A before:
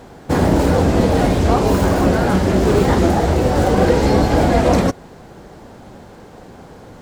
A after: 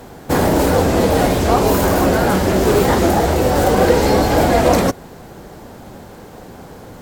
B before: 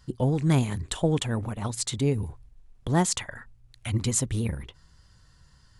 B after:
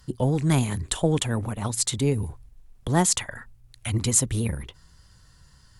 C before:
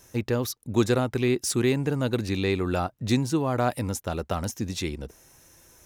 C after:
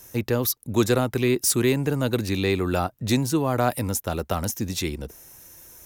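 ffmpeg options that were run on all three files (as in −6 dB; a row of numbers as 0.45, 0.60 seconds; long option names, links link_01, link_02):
-filter_complex "[0:a]acrossover=split=320[link_01][link_02];[link_01]asoftclip=type=tanh:threshold=-19dB[link_03];[link_02]equalizer=frequency=15000:width_type=o:width=0.75:gain=13[link_04];[link_03][link_04]amix=inputs=2:normalize=0,volume=2.5dB"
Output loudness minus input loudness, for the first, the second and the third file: +0.5, +2.5, +2.5 LU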